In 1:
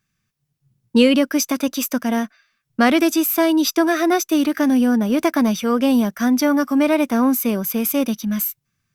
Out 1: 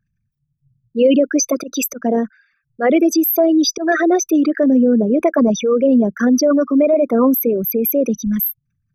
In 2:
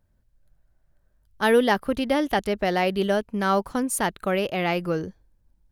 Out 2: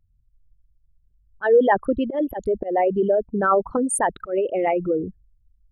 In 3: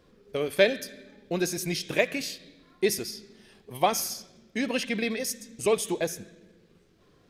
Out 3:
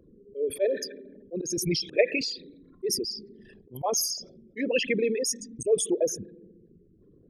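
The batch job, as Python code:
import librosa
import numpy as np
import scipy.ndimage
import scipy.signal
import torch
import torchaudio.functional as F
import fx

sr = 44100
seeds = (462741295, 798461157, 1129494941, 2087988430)

y = fx.envelope_sharpen(x, sr, power=3.0)
y = fx.auto_swell(y, sr, attack_ms=117.0)
y = y * librosa.db_to_amplitude(3.5)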